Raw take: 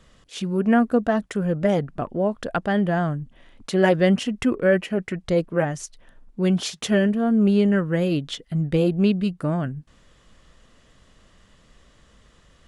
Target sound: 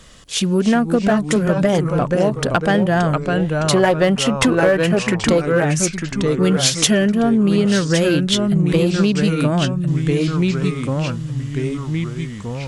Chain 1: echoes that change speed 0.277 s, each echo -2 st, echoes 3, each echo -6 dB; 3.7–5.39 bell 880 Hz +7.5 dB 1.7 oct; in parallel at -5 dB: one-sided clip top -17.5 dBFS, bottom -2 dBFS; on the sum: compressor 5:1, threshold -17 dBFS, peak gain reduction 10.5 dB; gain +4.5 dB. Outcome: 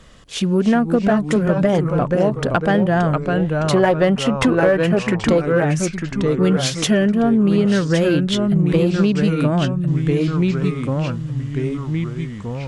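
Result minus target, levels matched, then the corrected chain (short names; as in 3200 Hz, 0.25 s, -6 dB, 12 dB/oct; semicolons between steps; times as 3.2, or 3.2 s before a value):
8000 Hz band -7.5 dB
echoes that change speed 0.277 s, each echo -2 st, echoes 3, each echo -6 dB; 3.7–5.39 bell 880 Hz +7.5 dB 1.7 oct; in parallel at -5 dB: one-sided clip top -17.5 dBFS, bottom -2 dBFS; on the sum: compressor 5:1, threshold -17 dBFS, peak gain reduction 10.5 dB; high shelf 3500 Hz +10 dB; gain +4.5 dB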